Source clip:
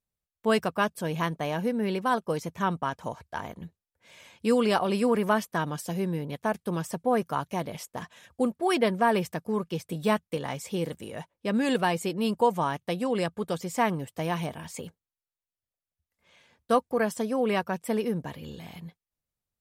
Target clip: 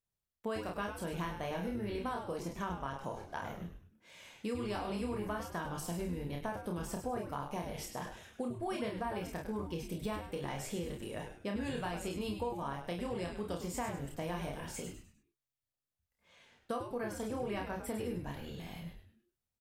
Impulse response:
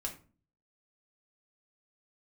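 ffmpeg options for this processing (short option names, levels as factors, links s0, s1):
-filter_complex "[0:a]asplit=2[s0][s1];[s1]aecho=0:1:29|50:0.708|0.422[s2];[s0][s2]amix=inputs=2:normalize=0,acompressor=threshold=0.0316:ratio=6,asplit=2[s3][s4];[s4]asplit=4[s5][s6][s7][s8];[s5]adelay=101,afreqshift=-130,volume=0.398[s9];[s6]adelay=202,afreqshift=-260,volume=0.14[s10];[s7]adelay=303,afreqshift=-390,volume=0.049[s11];[s8]adelay=404,afreqshift=-520,volume=0.017[s12];[s9][s10][s11][s12]amix=inputs=4:normalize=0[s13];[s3][s13]amix=inputs=2:normalize=0,volume=0.531"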